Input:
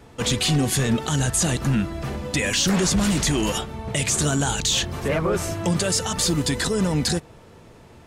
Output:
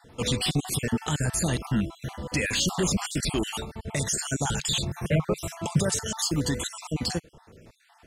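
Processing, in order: random holes in the spectrogram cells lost 43%; 4.45–5.94 s: peaking EQ 150 Hz +10.5 dB 0.67 oct; trim -3 dB

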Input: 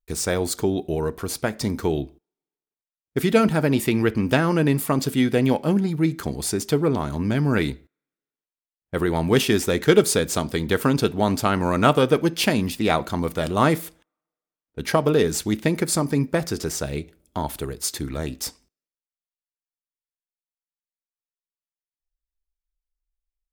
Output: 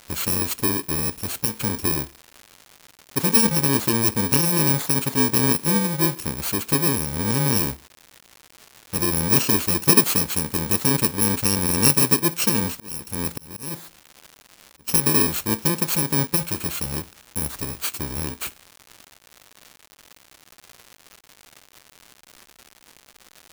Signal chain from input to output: bit-reversed sample order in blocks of 64 samples; crackle 240 per s -31 dBFS; 12.73–14.88 s: slow attack 526 ms

